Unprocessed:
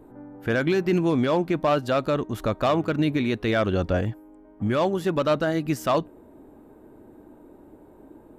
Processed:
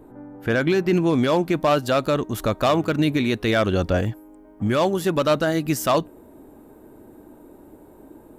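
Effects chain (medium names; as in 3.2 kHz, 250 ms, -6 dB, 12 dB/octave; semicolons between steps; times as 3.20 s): treble shelf 5.4 kHz +2 dB, from 1.13 s +10.5 dB; trim +2.5 dB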